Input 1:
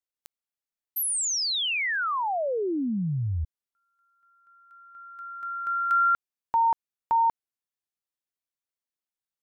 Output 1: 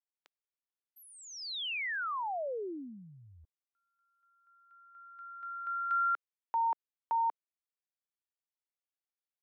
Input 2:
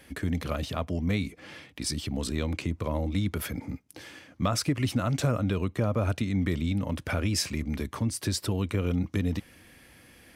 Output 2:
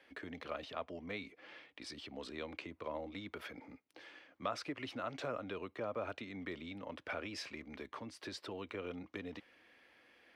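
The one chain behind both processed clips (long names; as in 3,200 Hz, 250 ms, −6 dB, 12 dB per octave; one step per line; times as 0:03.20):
three-way crossover with the lows and the highs turned down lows −21 dB, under 320 Hz, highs −22 dB, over 4,400 Hz
level −8 dB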